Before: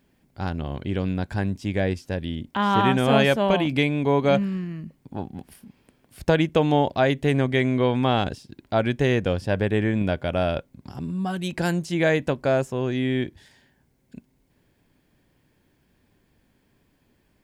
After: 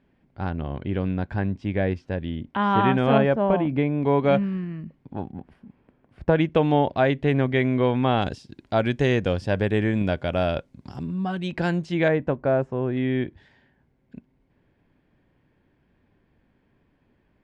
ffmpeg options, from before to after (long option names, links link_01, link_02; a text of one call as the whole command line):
ffmpeg -i in.wav -af "asetnsamples=nb_out_samples=441:pad=0,asendcmd='3.18 lowpass f 1300;4.03 lowpass f 2700;5.32 lowpass f 1600;6.36 lowpass f 3000;8.22 lowpass f 7200;11.03 lowpass f 3600;12.08 lowpass f 1500;12.97 lowpass f 2400',lowpass=2500" out.wav